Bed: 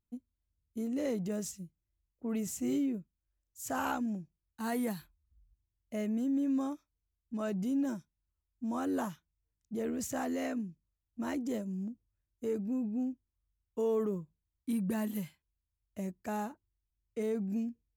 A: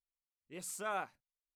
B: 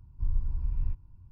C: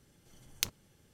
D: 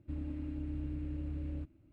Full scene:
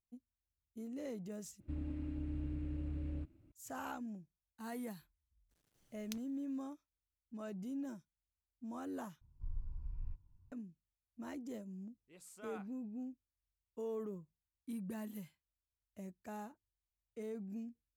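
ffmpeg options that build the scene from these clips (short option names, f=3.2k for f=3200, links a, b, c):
-filter_complex "[0:a]volume=-10.5dB[a];[3:a]acrusher=bits=9:mix=0:aa=0.000001[b];[a]asplit=3[c][d][e];[c]atrim=end=1.604[f];[4:a]atrim=end=1.92,asetpts=PTS-STARTPTS,volume=-2dB[g];[d]atrim=start=3.516:end=9.214[h];[2:a]atrim=end=1.31,asetpts=PTS-STARTPTS,volume=-14dB[i];[e]atrim=start=10.516[j];[b]atrim=end=1.13,asetpts=PTS-STARTPTS,volume=-16.5dB,afade=t=in:d=0.02,afade=t=out:st=1.11:d=0.02,adelay=242109S[k];[1:a]atrim=end=1.55,asetpts=PTS-STARTPTS,volume=-13.5dB,afade=t=in:d=0.004:c=hsin,afade=t=out:st=1.546:d=0.004:c=hsin,adelay=11580[l];[f][g]acrossfade=d=0.004:c1=hsin:c2=hsin[m];[m][h]acrossfade=d=0.004:c1=hsin:c2=hsin[n];[n][i]acrossfade=d=0.004:c1=hsin:c2=hsin[o];[o][j]acrossfade=d=0.004:c1=hsin:c2=hsin[p];[p][k][l]amix=inputs=3:normalize=0"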